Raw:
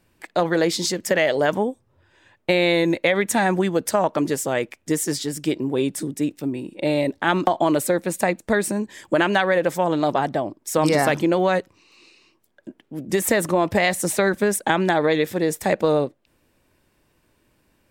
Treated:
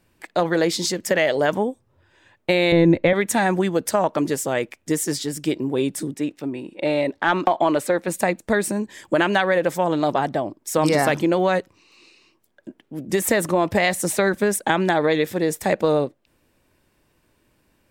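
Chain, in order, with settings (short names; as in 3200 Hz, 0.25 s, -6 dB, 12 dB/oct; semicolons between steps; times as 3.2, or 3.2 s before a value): 2.72–3.13 RIAA curve playback; 6.14–8.08 overdrive pedal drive 8 dB, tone 2400 Hz, clips at -4 dBFS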